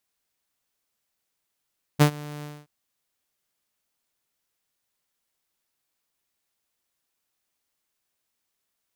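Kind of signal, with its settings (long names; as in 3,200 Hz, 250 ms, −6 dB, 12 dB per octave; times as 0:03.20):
note with an ADSR envelope saw 148 Hz, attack 26 ms, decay 87 ms, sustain −23 dB, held 0.44 s, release 236 ms −9 dBFS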